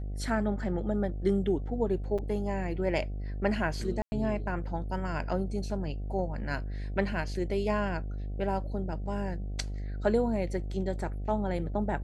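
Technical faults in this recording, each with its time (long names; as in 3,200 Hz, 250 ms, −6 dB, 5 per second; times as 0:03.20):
mains buzz 50 Hz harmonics 15 −35 dBFS
0:02.18–0:02.19: drop-out 5.8 ms
0:04.02–0:04.12: drop-out 100 ms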